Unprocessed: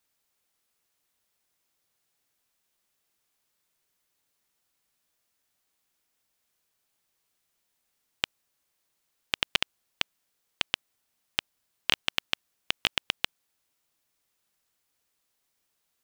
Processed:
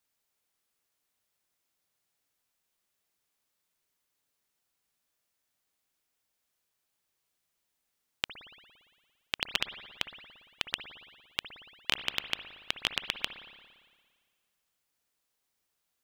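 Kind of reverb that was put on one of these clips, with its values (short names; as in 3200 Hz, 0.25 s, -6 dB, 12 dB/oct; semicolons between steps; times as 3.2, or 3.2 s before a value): spring tank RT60 1.7 s, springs 57 ms, chirp 45 ms, DRR 9 dB; gain -4 dB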